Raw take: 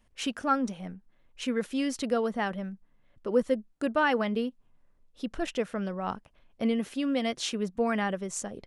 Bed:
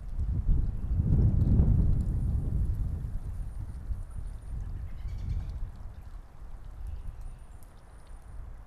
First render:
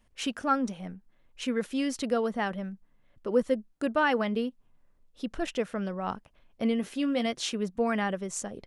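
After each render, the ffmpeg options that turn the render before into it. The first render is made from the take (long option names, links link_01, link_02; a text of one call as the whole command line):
ffmpeg -i in.wav -filter_complex "[0:a]asettb=1/sr,asplit=3[link_01][link_02][link_03];[link_01]atrim=end=6.814[link_04];[link_02]atrim=start=6.81:end=7.26,asetpts=PTS-STARTPTS,afade=type=in:duration=0.004:curve=qsin,afade=type=out:start_time=0.446:duration=0.004:curve=qsin,asplit=2[link_05][link_06];[link_06]adelay=17,volume=-9.5dB[link_07];[link_05][link_07]amix=inputs=2:normalize=0,atrim=end_sample=19845[link_08];[link_03]atrim=start=7.256[link_09];[link_04][link_08]acrossfade=duration=0.004:curve1=hsin:curve2=qsin[link_10];[link_10][link_09]acrossfade=duration=0.004:curve1=qsin:curve2=hsin" out.wav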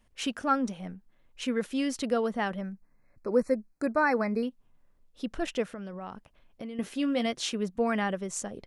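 ffmpeg -i in.wav -filter_complex "[0:a]asettb=1/sr,asplit=3[link_01][link_02][link_03];[link_01]atrim=end=2.614[link_04];[link_02]atrim=start=2.61:end=4.43,asetpts=PTS-STARTPTS,afade=type=in:duration=0.004:curve=qsin,afade=type=out:start_time=1.816:duration=0.004:curve=qsin,asuperstop=centerf=3200:order=20:qfactor=2.3[link_05];[link_03]atrim=start=4.426[link_06];[link_04][link_05]acrossfade=duration=0.004:curve1=hsin:curve2=qsin[link_07];[link_07][link_06]acrossfade=duration=0.004:curve1=qsin:curve2=hsin,asettb=1/sr,asplit=3[link_08][link_09][link_10];[link_08]atrim=end=5.644[link_11];[link_09]atrim=start=5.64:end=6.79,asetpts=PTS-STARTPTS,afade=type=in:duration=0.004:curve=qsin,afade=type=out:start_time=1.146:duration=0.004:curve=qsin,acompressor=threshold=-35dB:ratio=10:attack=3.2:release=140:knee=1:detection=peak[link_12];[link_10]atrim=start=6.786[link_13];[link_11][link_12]acrossfade=duration=0.004:curve1=hsin:curve2=qsin[link_14];[link_14][link_13]acrossfade=duration=0.004:curve1=qsin:curve2=hsin" out.wav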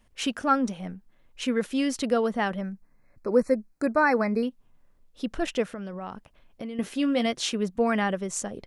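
ffmpeg -i in.wav -af "volume=3.5dB" out.wav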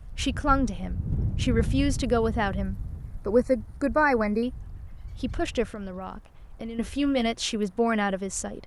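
ffmpeg -i in.wav -i bed.wav -filter_complex "[1:a]volume=-3dB[link_01];[0:a][link_01]amix=inputs=2:normalize=0" out.wav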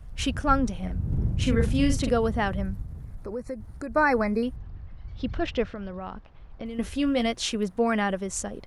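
ffmpeg -i in.wav -filter_complex "[0:a]asettb=1/sr,asplit=3[link_01][link_02][link_03];[link_01]atrim=end=0.784[link_04];[link_02]atrim=start=0.78:end=2.1,asetpts=PTS-STARTPTS,afade=type=in:duration=0.004:curve=qsin,afade=type=out:start_time=1.316:duration=0.004:curve=qsin,asplit=2[link_05][link_06];[link_06]adelay=43,volume=-6dB[link_07];[link_05][link_07]amix=inputs=2:normalize=0,atrim=end_sample=58212[link_08];[link_03]atrim=start=2.096[link_09];[link_04][link_08]acrossfade=duration=0.004:curve1=hsin:curve2=qsin[link_10];[link_10][link_09]acrossfade=duration=0.004:curve1=qsin:curve2=hsin,asplit=3[link_11][link_12][link_13];[link_11]afade=type=out:start_time=2.82:duration=0.02[link_14];[link_12]acompressor=threshold=-33dB:ratio=3:attack=3.2:release=140:knee=1:detection=peak,afade=type=in:start_time=2.82:duration=0.02,afade=type=out:start_time=3.94:duration=0.02[link_15];[link_13]afade=type=in:start_time=3.94:duration=0.02[link_16];[link_14][link_15][link_16]amix=inputs=3:normalize=0,asettb=1/sr,asplit=3[link_17][link_18][link_19];[link_17]atrim=end=4.564[link_20];[link_18]atrim=start=4.56:end=6.66,asetpts=PTS-STARTPTS,afade=type=in:duration=0.004:curve=qsin,afade=type=out:start_time=2.096:duration=0.004:curve=qsin,lowpass=frequency=4900:width=0.5412,lowpass=frequency=4900:width=1.3066[link_21];[link_19]atrim=start=6.656[link_22];[link_20][link_21]acrossfade=duration=0.004:curve1=hsin:curve2=qsin[link_23];[link_23][link_22]acrossfade=duration=0.004:curve1=qsin:curve2=hsin" out.wav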